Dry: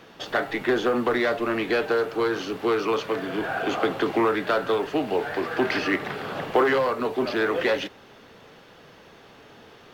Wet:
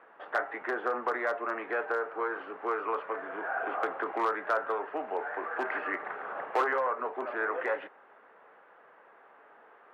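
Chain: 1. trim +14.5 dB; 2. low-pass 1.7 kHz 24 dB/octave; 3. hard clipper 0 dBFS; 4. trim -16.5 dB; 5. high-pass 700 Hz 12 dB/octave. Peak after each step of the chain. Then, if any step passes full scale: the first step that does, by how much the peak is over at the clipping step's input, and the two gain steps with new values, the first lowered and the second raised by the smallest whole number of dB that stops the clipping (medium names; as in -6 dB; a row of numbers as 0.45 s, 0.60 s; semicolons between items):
+4.5 dBFS, +4.5 dBFS, 0.0 dBFS, -16.5 dBFS, -16.0 dBFS; step 1, 4.5 dB; step 1 +9.5 dB, step 4 -11.5 dB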